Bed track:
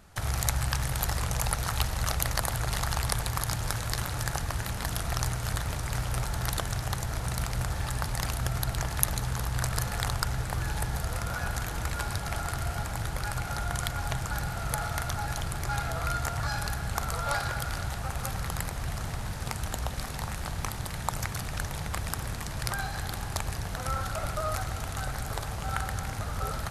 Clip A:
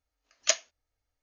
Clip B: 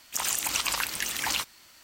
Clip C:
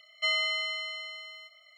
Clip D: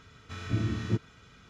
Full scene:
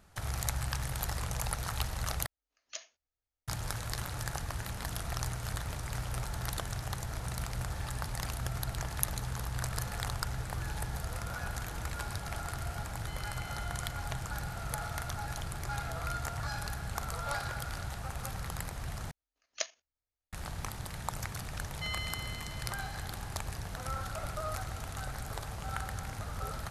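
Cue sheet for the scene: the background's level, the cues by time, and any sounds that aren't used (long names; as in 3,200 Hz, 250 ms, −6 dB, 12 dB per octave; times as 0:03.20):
bed track −6 dB
0:02.26: overwrite with A −11 dB + downward compressor, threshold −25 dBFS
0:12.85: mix in C −17.5 dB + brickwall limiter −26 dBFS
0:19.11: overwrite with A −5.5 dB + output level in coarse steps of 10 dB
0:21.59: mix in C −11 dB + high-pass filter 770 Hz
not used: B, D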